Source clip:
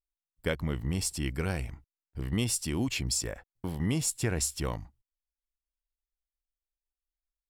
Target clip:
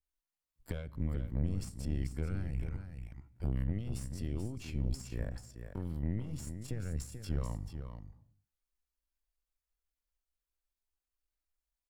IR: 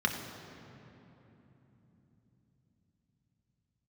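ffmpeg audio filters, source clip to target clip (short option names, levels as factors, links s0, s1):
-filter_complex "[0:a]lowshelf=f=88:g=3,alimiter=limit=0.0631:level=0:latency=1:release=455,acrossover=split=140[s0][s1];[s1]acompressor=threshold=0.00562:ratio=10[s2];[s0][s2]amix=inputs=2:normalize=0,atempo=0.63,aeval=exprs='0.0501*(cos(1*acos(clip(val(0)/0.0501,-1,1)))-cos(1*PI/2))+0.0126*(cos(4*acos(clip(val(0)/0.0501,-1,1)))-cos(4*PI/2))':c=same,aecho=1:1:437:0.376,asplit=2[s3][s4];[1:a]atrim=start_sample=2205,afade=t=out:st=0.39:d=0.01,atrim=end_sample=17640[s5];[s4][s5]afir=irnorm=-1:irlink=0,volume=0.0631[s6];[s3][s6]amix=inputs=2:normalize=0,adynamicequalizer=threshold=0.00141:dfrequency=1500:dqfactor=0.7:tfrequency=1500:tqfactor=0.7:attack=5:release=100:ratio=0.375:range=2:mode=cutabove:tftype=highshelf,volume=1.12"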